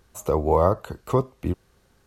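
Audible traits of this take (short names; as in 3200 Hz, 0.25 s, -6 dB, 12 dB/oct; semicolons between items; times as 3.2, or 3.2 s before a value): noise floor -62 dBFS; spectral tilt -2.0 dB/oct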